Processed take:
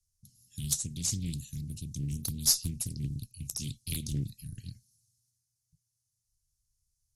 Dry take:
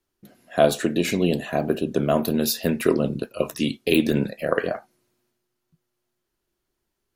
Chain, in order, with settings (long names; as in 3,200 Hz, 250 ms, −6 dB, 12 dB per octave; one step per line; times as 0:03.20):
elliptic band-stop filter 110–5,700 Hz, stop band 70 dB
harmonic generator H 6 −31 dB, 7 −33 dB, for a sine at −12.5 dBFS
Butterworth low-pass 12,000 Hz 72 dB per octave
highs frequency-modulated by the lows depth 0.58 ms
level +6.5 dB